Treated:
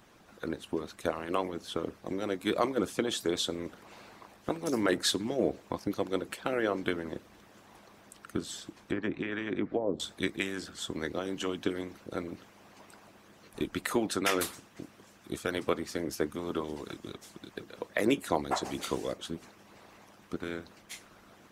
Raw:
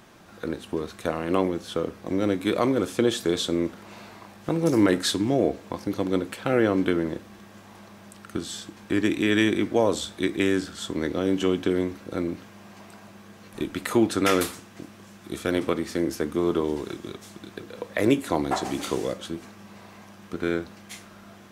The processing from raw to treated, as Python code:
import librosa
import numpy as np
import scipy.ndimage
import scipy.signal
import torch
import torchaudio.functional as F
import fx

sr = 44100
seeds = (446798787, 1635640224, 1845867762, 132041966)

y = fx.hpss(x, sr, part='harmonic', gain_db=-17)
y = fx.env_lowpass_down(y, sr, base_hz=480.0, full_db=-22.5, at=(8.71, 10.0))
y = y * 10.0 ** (-2.0 / 20.0)